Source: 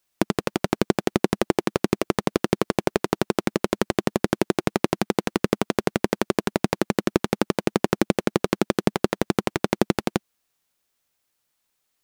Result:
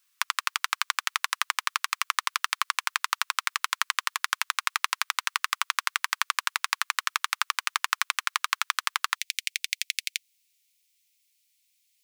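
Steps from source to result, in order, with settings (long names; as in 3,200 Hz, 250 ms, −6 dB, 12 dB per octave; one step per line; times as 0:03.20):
elliptic high-pass filter 1,100 Hz, stop band 60 dB, from 0:09.15 2,200 Hz
level +5.5 dB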